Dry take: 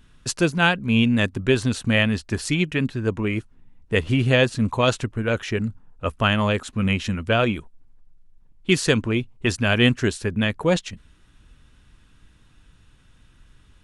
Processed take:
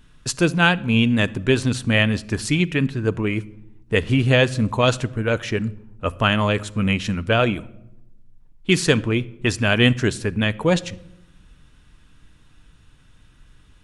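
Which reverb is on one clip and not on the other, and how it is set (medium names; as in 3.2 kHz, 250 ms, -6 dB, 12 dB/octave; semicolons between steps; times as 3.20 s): simulated room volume 2800 m³, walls furnished, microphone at 0.46 m; trim +1.5 dB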